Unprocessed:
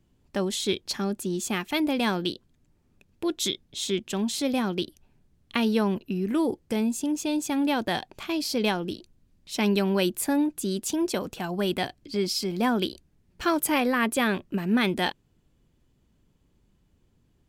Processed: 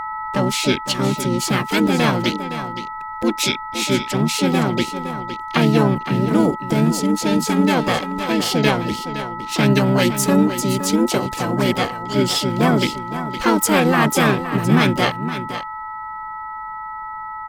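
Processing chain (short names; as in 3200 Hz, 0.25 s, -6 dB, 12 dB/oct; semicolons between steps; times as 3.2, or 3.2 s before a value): whine 1300 Hz -33 dBFS; echo 0.515 s -11 dB; harmoniser -7 st -1 dB, -5 st -11 dB, +7 st -9 dB; gain +5.5 dB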